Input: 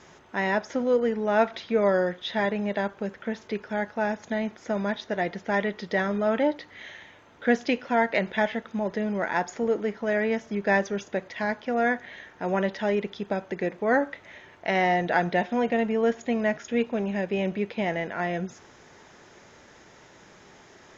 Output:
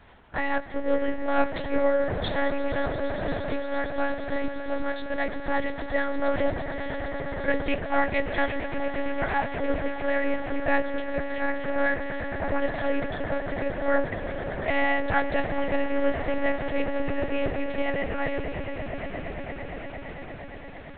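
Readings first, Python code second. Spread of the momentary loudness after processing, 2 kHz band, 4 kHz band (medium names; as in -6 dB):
9 LU, 0.0 dB, -1.0 dB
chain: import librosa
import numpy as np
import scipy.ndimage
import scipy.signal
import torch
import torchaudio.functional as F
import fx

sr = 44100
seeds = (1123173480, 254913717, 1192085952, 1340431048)

y = fx.hum_notches(x, sr, base_hz=60, count=9)
y = fx.echo_swell(y, sr, ms=115, loudest=8, wet_db=-15.0)
y = fx.lpc_monotone(y, sr, seeds[0], pitch_hz=280.0, order=8)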